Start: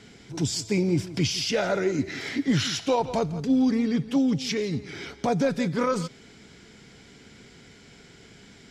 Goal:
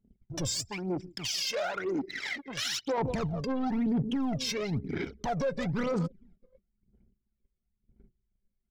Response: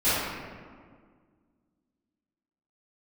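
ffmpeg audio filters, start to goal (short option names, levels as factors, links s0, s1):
-filter_complex "[0:a]asoftclip=type=tanh:threshold=0.0631,asettb=1/sr,asplit=3[s0][s1][s2];[s0]atrim=end=0.694[s3];[s1]atrim=start=0.69:end=2.98,asetpts=PTS-STARTPTS,afade=t=in:d=0.004:c=qsin,afade=t=out:st=2.286:d=0.004:c=qsin,highpass=f=810:p=1[s4];[s2]atrim=start=2.976[s5];[s3][s4]acrossfade=d=0.004:c1=hsin:c2=qsin[s6];[s6][s5]acrossfade=d=0.004:c1=qsin:c2=hsin,aecho=1:1:628:0.0841,anlmdn=3.98,aphaser=in_gain=1:out_gain=1:delay=1.9:decay=0.73:speed=1:type=sinusoidal,agate=range=0.126:threshold=0.00178:ratio=16:detection=peak,alimiter=limit=0.0668:level=0:latency=1:release=79"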